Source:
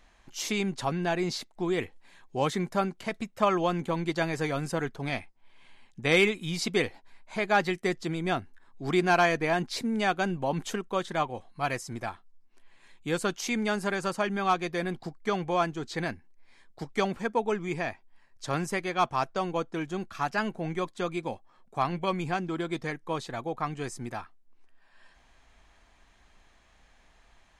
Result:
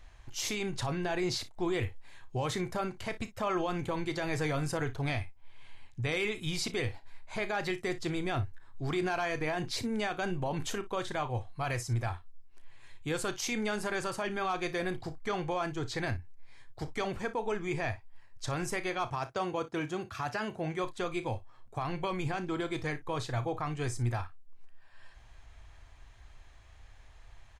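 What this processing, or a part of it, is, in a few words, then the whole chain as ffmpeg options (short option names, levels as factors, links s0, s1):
car stereo with a boomy subwoofer: -filter_complex "[0:a]lowshelf=f=140:t=q:w=3:g=8,alimiter=limit=0.0631:level=0:latency=1:release=35,asettb=1/sr,asplit=3[s0][s1][s2];[s0]atrim=end=19.114[s3];[s1]atrim=start=19.11:end=20.84,asetpts=PTS-STARTPTS,afade=t=in:d=0.004:c=qsin,afade=t=out:st=1.726:d=0.004:c=qsin,highpass=76[s4];[s2]atrim=start=20.836[s5];[s3][s4]acrossfade=d=0.004:c1=hsin:c2=qsin[s6];[s6][s5]acrossfade=d=0.004:c1=qsin:c2=hsin,aecho=1:1:33|58:0.224|0.141"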